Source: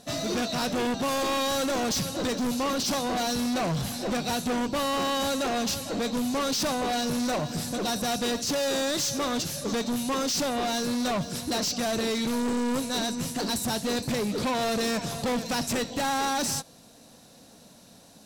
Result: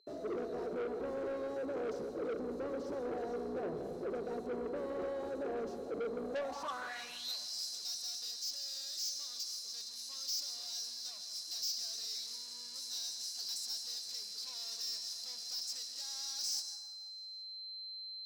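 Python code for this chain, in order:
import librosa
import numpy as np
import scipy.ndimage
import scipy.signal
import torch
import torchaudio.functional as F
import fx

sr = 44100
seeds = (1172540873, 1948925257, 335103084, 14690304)

y = fx.octave_divider(x, sr, octaves=2, level_db=2.0)
y = fx.quant_dither(y, sr, seeds[0], bits=6, dither='none')
y = y + 10.0 ** (-37.0 / 20.0) * np.sin(2.0 * np.pi * 4100.0 * np.arange(len(y)) / sr)
y = fx.peak_eq(y, sr, hz=2700.0, db=-6.0, octaves=1.4)
y = fx.rev_plate(y, sr, seeds[1], rt60_s=1.7, hf_ratio=0.35, predelay_ms=110, drr_db=7.5)
y = fx.filter_sweep_bandpass(y, sr, from_hz=420.0, to_hz=5000.0, start_s=6.22, end_s=7.41, q=6.3)
y = 10.0 ** (-38.5 / 20.0) * np.tanh(y / 10.0 ** (-38.5 / 20.0))
y = fx.bass_treble(y, sr, bass_db=-4, treble_db=7)
y = fx.echo_feedback(y, sr, ms=165, feedback_pct=58, wet_db=-19.5)
y = fx.rider(y, sr, range_db=4, speed_s=2.0)
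y = y * librosa.db_to_amplitude(1.0)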